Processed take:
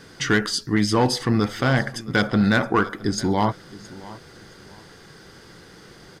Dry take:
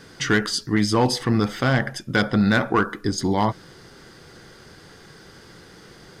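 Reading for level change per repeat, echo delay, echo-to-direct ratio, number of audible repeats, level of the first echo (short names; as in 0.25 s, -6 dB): -11.5 dB, 0.669 s, -18.5 dB, 2, -19.0 dB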